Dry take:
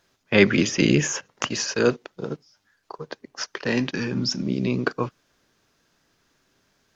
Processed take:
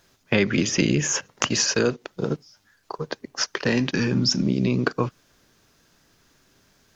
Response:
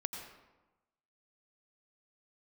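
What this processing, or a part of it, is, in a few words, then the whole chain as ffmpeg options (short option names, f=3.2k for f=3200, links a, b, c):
ASMR close-microphone chain: -af "lowshelf=f=190:g=5.5,acompressor=threshold=-22dB:ratio=4,highshelf=f=6.8k:g=6.5,volume=4dB"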